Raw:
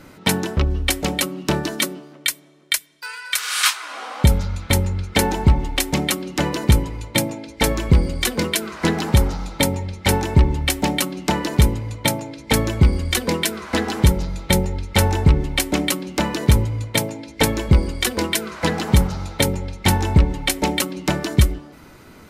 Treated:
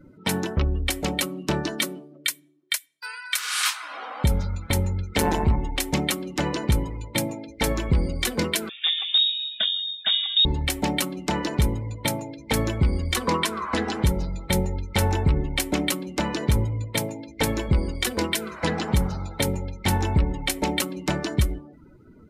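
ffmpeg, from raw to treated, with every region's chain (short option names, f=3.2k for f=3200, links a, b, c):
-filter_complex "[0:a]asettb=1/sr,asplit=3[a][b][c];[a]atrim=end=5.164[d];[b]atrim=start=5.16:end=5.56,asetpts=PTS-STARTPTS,afade=t=in:d=0.004:c=qsin,afade=t=out:st=0.396:d=0.004:c=qsin,tremolo=f=160:d=0.788,acontrast=85[e];[c]atrim=start=5.556[f];[d][e]acrossfade=d=0.004:c1=hsin:c2=qsin[g];[g][f]acrossfade=d=0.004:c1=qsin:c2=hsin,asettb=1/sr,asplit=3[h][i][j];[h]atrim=end=8.694[k];[i]atrim=start=8.69:end=10.45,asetpts=PTS-STARTPTS,afade=t=in:d=0.004:c=qsin,afade=t=out:st=1.756:d=0.004:c=qsin,equalizer=f=3k:w=0.33:g=-7,volume=11dB,asoftclip=hard,volume=-11dB,lowpass=f=3.2k:t=q:w=0.5098,lowpass=f=3.2k:t=q:w=0.6013,lowpass=f=3.2k:t=q:w=0.9,lowpass=f=3.2k:t=q:w=2.563,afreqshift=-3800[l];[j]atrim=start=10.446[m];[k][l]acrossfade=d=0.004:c1=hsin:c2=qsin[n];[n][m]acrossfade=d=0.004:c1=qsin:c2=hsin,asettb=1/sr,asplit=3[o][p][q];[o]atrim=end=13.164[r];[p]atrim=start=13.16:end=13.74,asetpts=PTS-STARTPTS,afade=t=in:d=0.004:c=qsin,afade=t=out:st=0.576:d=0.004:c=qsin,lowpass=11k,equalizer=f=1.1k:w=3.5:g=14.5[s];[q]atrim=start=13.736[t];[r][s]acrossfade=d=0.004:c1=hsin:c2=qsin[u];[u][t]acrossfade=d=0.004:c1=qsin:c2=hsin,afftdn=nr=24:nf=-40,alimiter=limit=-8.5dB:level=0:latency=1:release=70,volume=-3dB"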